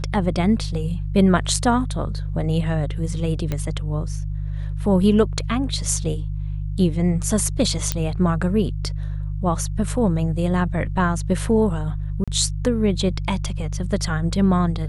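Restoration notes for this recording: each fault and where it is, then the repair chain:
hum 50 Hz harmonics 3 -26 dBFS
3.52 pop -12 dBFS
7.92 pop -6 dBFS
12.24–12.28 gap 36 ms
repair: de-click; de-hum 50 Hz, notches 3; interpolate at 12.24, 36 ms

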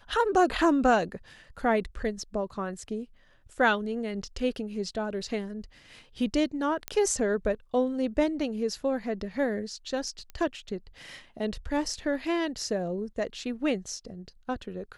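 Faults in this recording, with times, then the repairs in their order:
6.88 pop -14 dBFS
10.3 pop -27 dBFS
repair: de-click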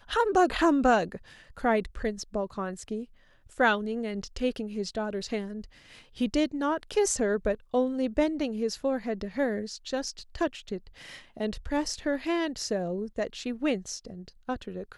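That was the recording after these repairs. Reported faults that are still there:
none

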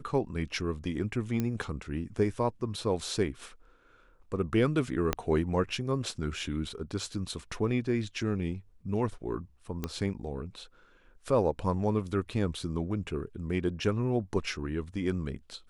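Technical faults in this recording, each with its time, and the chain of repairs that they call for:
1.4 pop -17 dBFS
5.13 pop -12 dBFS
9.84 pop -18 dBFS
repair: de-click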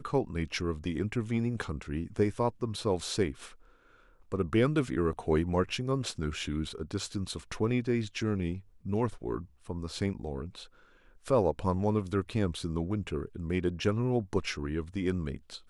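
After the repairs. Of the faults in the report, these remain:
5.13 pop
9.84 pop

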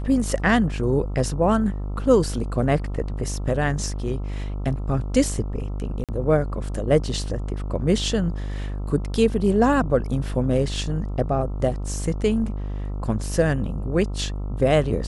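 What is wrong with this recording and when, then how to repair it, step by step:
buzz 50 Hz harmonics 27 -28 dBFS
6.04–6.09 gap 47 ms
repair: de-hum 50 Hz, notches 27; interpolate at 6.04, 47 ms

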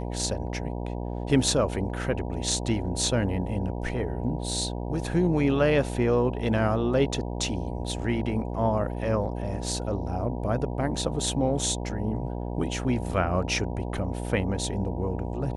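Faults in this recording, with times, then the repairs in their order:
buzz 60 Hz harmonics 16 -32 dBFS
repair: de-hum 60 Hz, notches 16

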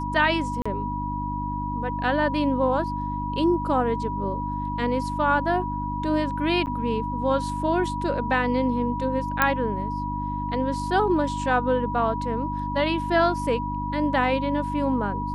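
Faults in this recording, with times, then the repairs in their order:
hum 50 Hz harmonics 6 -31 dBFS
tone 970 Hz -29 dBFS
0.62–0.66 gap 35 ms
6.66–6.67 gap 9.6 ms
9.42 pop -5 dBFS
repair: de-click; de-hum 50 Hz, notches 6; notch 970 Hz, Q 30; interpolate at 0.62, 35 ms; interpolate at 6.66, 9.6 ms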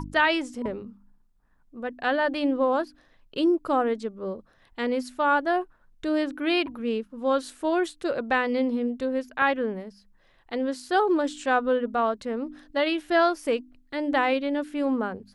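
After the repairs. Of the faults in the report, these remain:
9.42 pop

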